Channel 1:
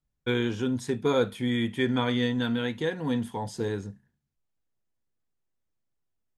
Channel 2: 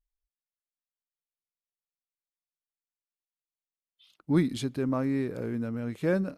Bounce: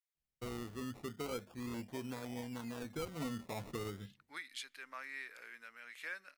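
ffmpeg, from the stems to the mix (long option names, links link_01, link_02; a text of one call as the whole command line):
ffmpeg -i stem1.wav -i stem2.wav -filter_complex "[0:a]acrusher=samples=22:mix=1:aa=0.000001:lfo=1:lforange=13.2:lforate=0.37,adelay=150,volume=-7dB,afade=type=in:start_time=2.74:duration=0.6:silence=0.398107,afade=type=out:start_time=5.14:duration=0.33:silence=0.266073[link_01];[1:a]highpass=frequency=1900:width_type=q:width=2.1,volume=-4.5dB[link_02];[link_01][link_02]amix=inputs=2:normalize=0,alimiter=level_in=8.5dB:limit=-24dB:level=0:latency=1:release=407,volume=-8.5dB" out.wav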